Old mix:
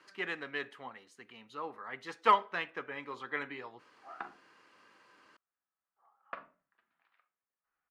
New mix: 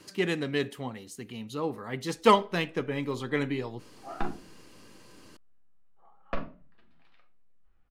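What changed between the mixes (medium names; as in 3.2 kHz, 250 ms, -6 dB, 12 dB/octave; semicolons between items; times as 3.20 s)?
background: send +6.0 dB; master: remove band-pass filter 1.4 kHz, Q 1.4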